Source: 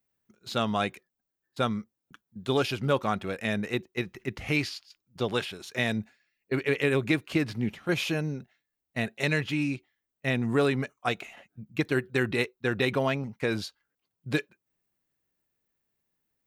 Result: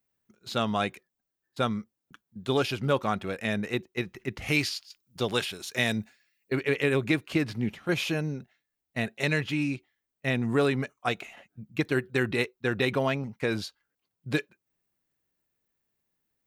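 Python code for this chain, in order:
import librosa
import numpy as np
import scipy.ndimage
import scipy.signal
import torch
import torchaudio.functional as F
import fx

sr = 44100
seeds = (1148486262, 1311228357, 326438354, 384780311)

y = fx.high_shelf(x, sr, hz=4000.0, db=8.5, at=(4.42, 6.53))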